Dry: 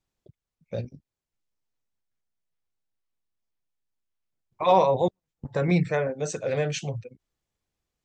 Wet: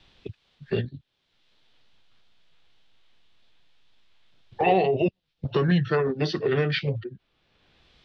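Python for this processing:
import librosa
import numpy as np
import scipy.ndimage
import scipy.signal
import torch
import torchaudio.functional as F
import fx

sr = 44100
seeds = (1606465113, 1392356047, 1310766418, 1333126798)

y = fx.formant_shift(x, sr, semitones=-5)
y = fx.lowpass_res(y, sr, hz=3500.0, q=3.1)
y = fx.band_squash(y, sr, depth_pct=70)
y = y * 10.0 ** (2.5 / 20.0)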